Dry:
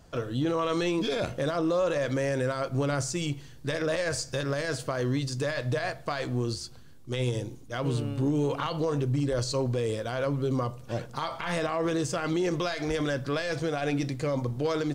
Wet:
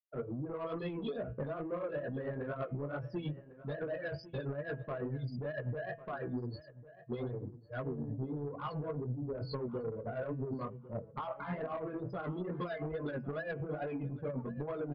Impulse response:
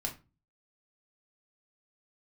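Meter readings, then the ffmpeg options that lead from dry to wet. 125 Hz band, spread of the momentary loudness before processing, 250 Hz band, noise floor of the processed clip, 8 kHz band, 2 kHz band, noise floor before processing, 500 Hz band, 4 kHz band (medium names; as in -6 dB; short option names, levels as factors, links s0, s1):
-9.5 dB, 6 LU, -10.5 dB, -55 dBFS, under -40 dB, -12.0 dB, -47 dBFS, -10.0 dB, -20.0 dB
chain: -filter_complex "[0:a]afftfilt=real='re*gte(hypot(re,im),0.0562)':imag='im*gte(hypot(re,im),0.0562)':win_size=1024:overlap=0.75,highpass=f=62:w=0.5412,highpass=f=62:w=1.3066,aemphasis=mode=reproduction:type=75kf,flanger=delay=15.5:depth=6.1:speed=2.3,lowshelf=f=230:g=2.5,aecho=1:1:4.8:0.36,acompressor=threshold=0.0224:ratio=16,asoftclip=type=tanh:threshold=0.0237,bandreject=f=164.7:t=h:w=4,bandreject=f=329.4:t=h:w=4,bandreject=f=494.1:t=h:w=4,bandreject=f=658.8:t=h:w=4,bandreject=f=823.5:t=h:w=4,bandreject=f=988.2:t=h:w=4,bandreject=f=1152.9:t=h:w=4,bandreject=f=1317.6:t=h:w=4,bandreject=f=1482.3:t=h:w=4,bandreject=f=1647:t=h:w=4,bandreject=f=1811.7:t=h:w=4,bandreject=f=1976.4:t=h:w=4,bandreject=f=2141.1:t=h:w=4,bandreject=f=2305.8:t=h:w=4,bandreject=f=2470.5:t=h:w=4,bandreject=f=2635.2:t=h:w=4,bandreject=f=2799.9:t=h:w=4,bandreject=f=2964.6:t=h:w=4,bandreject=f=3129.3:t=h:w=4,tremolo=f=9.1:d=0.5,asplit=2[s0][s1];[s1]adelay=1100,lowpass=f=2300:p=1,volume=0.158,asplit=2[s2][s3];[s3]adelay=1100,lowpass=f=2300:p=1,volume=0.2[s4];[s2][s4]amix=inputs=2:normalize=0[s5];[s0][s5]amix=inputs=2:normalize=0,aresample=11025,aresample=44100,volume=1.41"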